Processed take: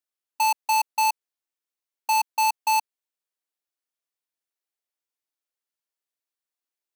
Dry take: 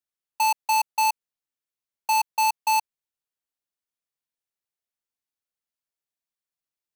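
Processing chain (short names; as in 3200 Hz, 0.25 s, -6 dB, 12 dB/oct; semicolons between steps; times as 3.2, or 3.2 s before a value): brick-wall FIR high-pass 250 Hz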